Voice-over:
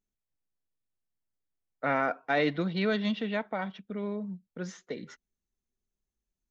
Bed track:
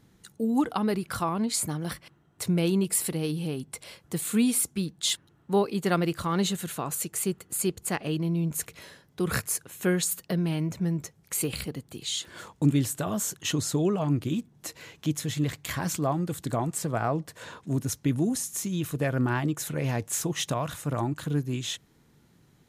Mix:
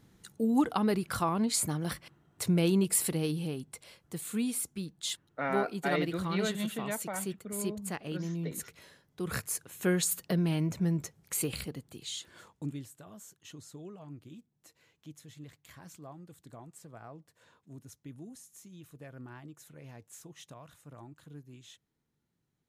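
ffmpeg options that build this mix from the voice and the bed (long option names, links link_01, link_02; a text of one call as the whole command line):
ffmpeg -i stem1.wav -i stem2.wav -filter_complex "[0:a]adelay=3550,volume=-5dB[link_01];[1:a]volume=5.5dB,afade=type=out:start_time=3.18:duration=0.66:silence=0.446684,afade=type=in:start_time=9.18:duration=0.99:silence=0.446684,afade=type=out:start_time=10.96:duration=1.95:silence=0.105925[link_02];[link_01][link_02]amix=inputs=2:normalize=0" out.wav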